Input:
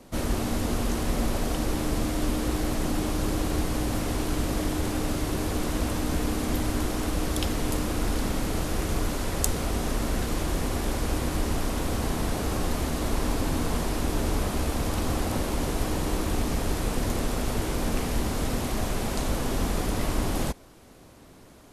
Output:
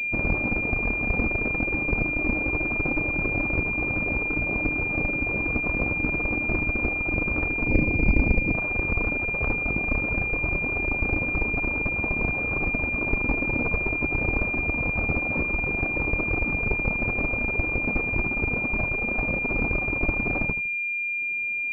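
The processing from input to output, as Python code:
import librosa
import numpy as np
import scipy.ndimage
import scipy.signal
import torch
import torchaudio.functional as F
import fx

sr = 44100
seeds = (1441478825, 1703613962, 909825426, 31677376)

y = fx.cheby_harmonics(x, sr, harmonics=(8,), levels_db=(-14,), full_scale_db=-3.5)
y = fx.tilt_shelf(y, sr, db=8.0, hz=700.0, at=(7.68, 8.55))
y = fx.dereverb_blind(y, sr, rt60_s=1.6)
y = fx.echo_feedback(y, sr, ms=79, feedback_pct=30, wet_db=-12.5)
y = fx.pwm(y, sr, carrier_hz=2400.0)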